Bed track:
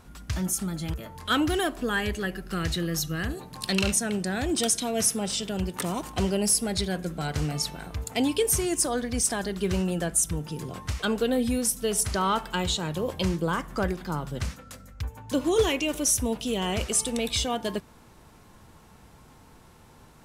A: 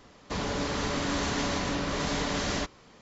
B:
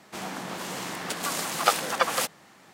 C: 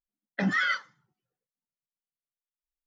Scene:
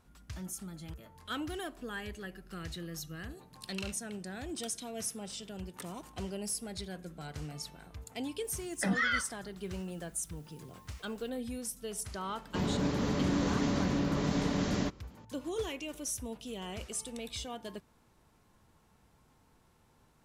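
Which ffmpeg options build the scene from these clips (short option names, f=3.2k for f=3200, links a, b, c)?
-filter_complex "[0:a]volume=-13.5dB[a];[3:a]acompressor=mode=upward:threshold=-37dB:ratio=2.5:attack=3.2:release=140:knee=2.83:detection=peak[b];[1:a]equalizer=f=180:w=0.48:g=12.5[c];[b]atrim=end=2.86,asetpts=PTS-STARTPTS,volume=-4dB,afade=t=in:d=0.004:c=hsin,afade=t=out:st=2.856:d=0.004:c=hsin,adelay=8440[d];[c]atrim=end=3.01,asetpts=PTS-STARTPTS,volume=-8.5dB,afade=t=in:d=0.004:c=hsin,afade=t=out:st=3.006:d=0.004:c=hsin,adelay=12240[e];[a][d][e]amix=inputs=3:normalize=0"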